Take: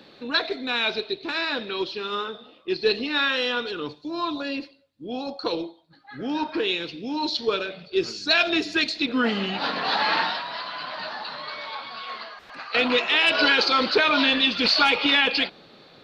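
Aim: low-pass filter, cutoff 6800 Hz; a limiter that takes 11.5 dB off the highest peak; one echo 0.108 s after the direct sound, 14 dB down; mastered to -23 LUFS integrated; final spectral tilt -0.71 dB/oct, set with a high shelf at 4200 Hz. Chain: LPF 6800 Hz; high shelf 4200 Hz -3 dB; limiter -19 dBFS; echo 0.108 s -14 dB; gain +6 dB

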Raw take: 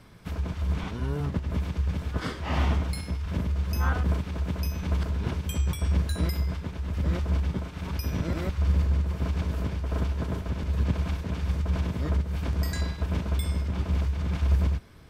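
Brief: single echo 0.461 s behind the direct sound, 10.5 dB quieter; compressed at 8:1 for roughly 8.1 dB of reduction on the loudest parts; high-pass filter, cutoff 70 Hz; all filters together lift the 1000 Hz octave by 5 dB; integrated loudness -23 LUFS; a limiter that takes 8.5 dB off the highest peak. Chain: HPF 70 Hz; bell 1000 Hz +6 dB; compressor 8:1, threshold -29 dBFS; limiter -28.5 dBFS; echo 0.461 s -10.5 dB; gain +14 dB

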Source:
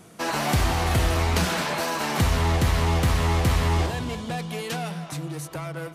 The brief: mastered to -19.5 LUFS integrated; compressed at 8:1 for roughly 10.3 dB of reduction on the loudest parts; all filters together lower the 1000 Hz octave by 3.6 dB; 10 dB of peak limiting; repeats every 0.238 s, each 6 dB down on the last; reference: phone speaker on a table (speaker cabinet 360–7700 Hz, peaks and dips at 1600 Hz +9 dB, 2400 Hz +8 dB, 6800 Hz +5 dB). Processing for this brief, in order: bell 1000 Hz -6 dB; compressor 8:1, threshold -28 dBFS; limiter -29.5 dBFS; speaker cabinet 360–7700 Hz, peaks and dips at 1600 Hz +9 dB, 2400 Hz +8 dB, 6800 Hz +5 dB; feedback echo 0.238 s, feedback 50%, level -6 dB; gain +17 dB

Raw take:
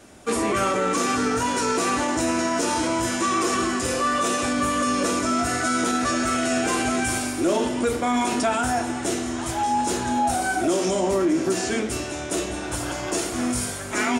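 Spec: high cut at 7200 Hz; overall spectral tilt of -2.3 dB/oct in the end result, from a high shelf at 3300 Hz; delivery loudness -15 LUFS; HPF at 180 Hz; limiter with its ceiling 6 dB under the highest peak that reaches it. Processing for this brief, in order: HPF 180 Hz; LPF 7200 Hz; high shelf 3300 Hz +5 dB; gain +10 dB; limiter -6.5 dBFS

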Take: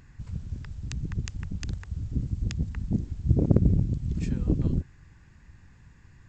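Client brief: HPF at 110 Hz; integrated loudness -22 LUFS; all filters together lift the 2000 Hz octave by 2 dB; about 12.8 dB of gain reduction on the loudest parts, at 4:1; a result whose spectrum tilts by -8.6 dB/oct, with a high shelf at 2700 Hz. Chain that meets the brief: HPF 110 Hz; bell 2000 Hz +5.5 dB; high shelf 2700 Hz -7 dB; compressor 4:1, threshold -31 dBFS; gain +16 dB

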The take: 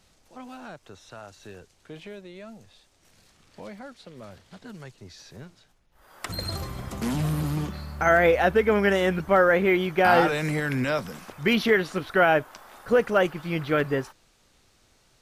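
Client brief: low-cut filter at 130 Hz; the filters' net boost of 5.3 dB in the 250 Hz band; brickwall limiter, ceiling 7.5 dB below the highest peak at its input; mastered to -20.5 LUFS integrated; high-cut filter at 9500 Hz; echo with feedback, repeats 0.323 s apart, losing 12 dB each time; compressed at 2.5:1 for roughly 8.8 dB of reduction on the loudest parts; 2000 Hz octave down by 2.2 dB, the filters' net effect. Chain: HPF 130 Hz; LPF 9500 Hz; bell 250 Hz +8 dB; bell 2000 Hz -3 dB; compressor 2.5:1, threshold -27 dBFS; limiter -21.5 dBFS; feedback echo 0.323 s, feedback 25%, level -12 dB; gain +12 dB

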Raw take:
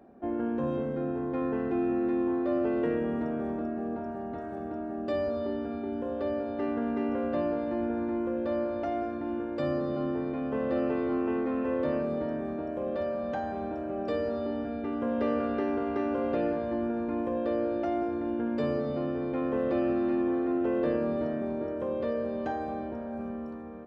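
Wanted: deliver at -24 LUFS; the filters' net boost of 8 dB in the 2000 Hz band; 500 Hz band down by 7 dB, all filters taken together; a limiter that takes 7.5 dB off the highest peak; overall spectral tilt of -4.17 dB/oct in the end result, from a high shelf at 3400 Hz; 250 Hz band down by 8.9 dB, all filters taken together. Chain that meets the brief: bell 250 Hz -9 dB; bell 500 Hz -7 dB; bell 2000 Hz +8.5 dB; high shelf 3400 Hz +8 dB; gain +14 dB; limiter -14.5 dBFS

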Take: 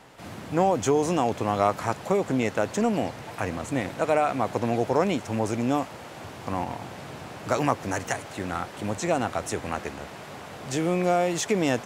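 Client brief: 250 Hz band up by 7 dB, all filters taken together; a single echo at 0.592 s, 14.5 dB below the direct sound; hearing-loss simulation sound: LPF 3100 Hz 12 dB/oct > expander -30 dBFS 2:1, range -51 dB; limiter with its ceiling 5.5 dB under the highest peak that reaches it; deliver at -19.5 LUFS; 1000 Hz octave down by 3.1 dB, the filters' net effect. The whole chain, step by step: bell 250 Hz +9 dB; bell 1000 Hz -5.5 dB; limiter -13 dBFS; LPF 3100 Hz 12 dB/oct; echo 0.592 s -14.5 dB; expander -30 dBFS 2:1, range -51 dB; gain +5.5 dB

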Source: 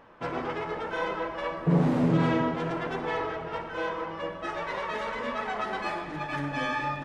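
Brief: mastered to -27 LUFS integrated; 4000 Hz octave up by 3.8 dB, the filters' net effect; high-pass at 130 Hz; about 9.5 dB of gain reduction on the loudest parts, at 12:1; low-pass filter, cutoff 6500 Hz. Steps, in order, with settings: HPF 130 Hz; LPF 6500 Hz; bell 4000 Hz +5.5 dB; compressor 12:1, threshold -29 dBFS; gain +7 dB

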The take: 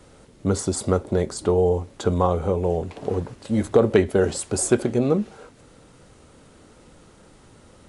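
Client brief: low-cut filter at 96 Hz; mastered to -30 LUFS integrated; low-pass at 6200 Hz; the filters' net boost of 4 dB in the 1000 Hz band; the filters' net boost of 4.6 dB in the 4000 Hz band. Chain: HPF 96 Hz; LPF 6200 Hz; bell 1000 Hz +5 dB; bell 4000 Hz +6.5 dB; gain -8 dB

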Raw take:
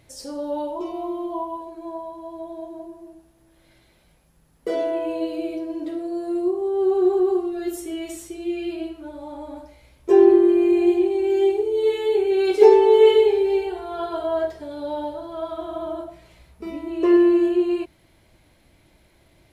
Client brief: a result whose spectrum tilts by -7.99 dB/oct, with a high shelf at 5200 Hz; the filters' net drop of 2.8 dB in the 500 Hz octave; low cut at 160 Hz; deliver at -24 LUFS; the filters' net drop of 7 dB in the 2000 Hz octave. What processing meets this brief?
HPF 160 Hz; bell 500 Hz -3.5 dB; bell 2000 Hz -8 dB; high shelf 5200 Hz -4 dB; gain -1 dB

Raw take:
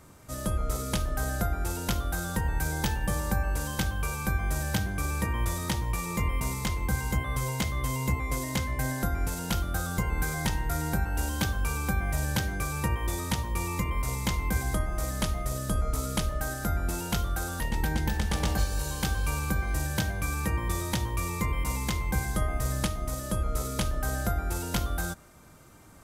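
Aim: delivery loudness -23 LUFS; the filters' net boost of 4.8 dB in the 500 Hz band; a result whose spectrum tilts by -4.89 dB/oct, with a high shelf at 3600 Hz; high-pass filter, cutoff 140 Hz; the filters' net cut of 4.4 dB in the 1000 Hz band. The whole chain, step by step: HPF 140 Hz; bell 500 Hz +8.5 dB; bell 1000 Hz -8 dB; high shelf 3600 Hz -5 dB; gain +10.5 dB

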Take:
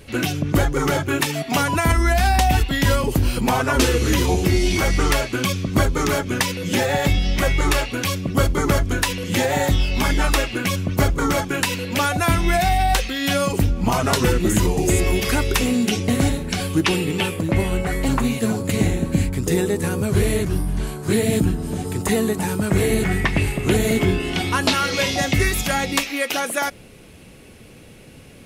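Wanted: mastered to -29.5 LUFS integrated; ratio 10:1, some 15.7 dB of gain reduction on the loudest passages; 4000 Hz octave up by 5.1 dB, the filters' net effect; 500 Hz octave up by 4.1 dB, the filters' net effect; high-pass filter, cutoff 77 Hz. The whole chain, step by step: HPF 77 Hz; bell 500 Hz +5 dB; bell 4000 Hz +6.5 dB; compressor 10:1, threshold -29 dBFS; gain +2.5 dB

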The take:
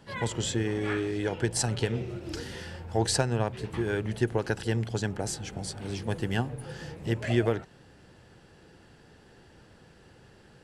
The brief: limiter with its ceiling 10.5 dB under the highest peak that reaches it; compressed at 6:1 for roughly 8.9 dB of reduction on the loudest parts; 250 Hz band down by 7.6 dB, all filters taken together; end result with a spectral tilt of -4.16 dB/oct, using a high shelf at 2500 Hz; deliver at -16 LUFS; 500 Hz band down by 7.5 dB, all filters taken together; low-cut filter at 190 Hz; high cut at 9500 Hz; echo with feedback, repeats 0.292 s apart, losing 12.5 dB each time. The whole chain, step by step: HPF 190 Hz; LPF 9500 Hz; bell 250 Hz -6 dB; bell 500 Hz -7 dB; high shelf 2500 Hz -6.5 dB; compressor 6:1, threshold -37 dBFS; limiter -34 dBFS; feedback echo 0.292 s, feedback 24%, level -12.5 dB; gain +29 dB

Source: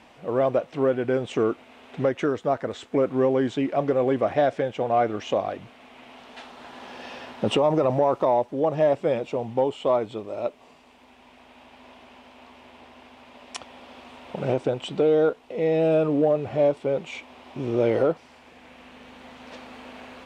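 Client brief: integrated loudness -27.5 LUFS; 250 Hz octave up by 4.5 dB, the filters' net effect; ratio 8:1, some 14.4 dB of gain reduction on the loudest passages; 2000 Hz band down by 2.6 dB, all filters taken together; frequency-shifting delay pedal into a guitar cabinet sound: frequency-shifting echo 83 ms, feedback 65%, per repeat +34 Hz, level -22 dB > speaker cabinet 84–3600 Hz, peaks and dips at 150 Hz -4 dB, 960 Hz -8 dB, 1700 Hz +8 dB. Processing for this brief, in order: bell 250 Hz +6 dB; bell 2000 Hz -9 dB; compressor 8:1, threshold -30 dBFS; frequency-shifting echo 83 ms, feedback 65%, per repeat +34 Hz, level -22 dB; speaker cabinet 84–3600 Hz, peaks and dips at 150 Hz -4 dB, 960 Hz -8 dB, 1700 Hz +8 dB; gain +8.5 dB

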